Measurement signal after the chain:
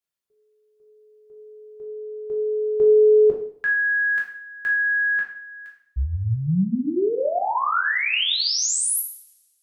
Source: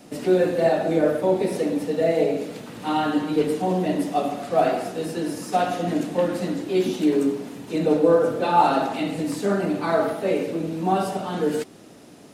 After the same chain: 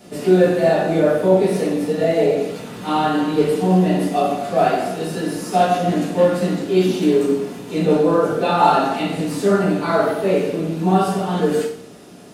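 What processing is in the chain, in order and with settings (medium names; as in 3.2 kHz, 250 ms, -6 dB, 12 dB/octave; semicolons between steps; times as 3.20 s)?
two-slope reverb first 0.55 s, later 1.7 s, from -27 dB, DRR -3.5 dB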